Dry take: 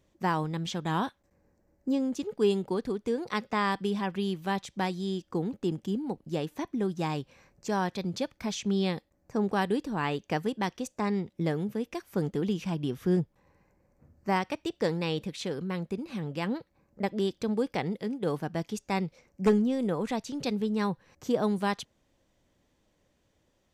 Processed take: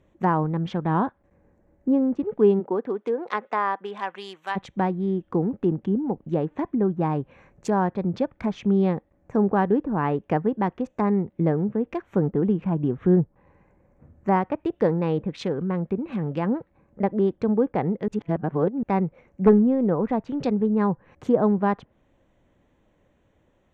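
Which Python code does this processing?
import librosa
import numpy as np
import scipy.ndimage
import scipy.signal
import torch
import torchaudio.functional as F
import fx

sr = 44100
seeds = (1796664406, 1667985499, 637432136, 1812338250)

y = fx.highpass(x, sr, hz=fx.line((2.59, 280.0), (4.55, 1000.0)), slope=12, at=(2.59, 4.55), fade=0.02)
y = fx.edit(y, sr, fx.reverse_span(start_s=18.08, length_s=0.75), tone=tone)
y = fx.wiener(y, sr, points=9)
y = fx.env_lowpass_down(y, sr, base_hz=1400.0, full_db=-28.5)
y = fx.dynamic_eq(y, sr, hz=3300.0, q=0.85, threshold_db=-54.0, ratio=4.0, max_db=-4)
y = y * librosa.db_to_amplitude(7.5)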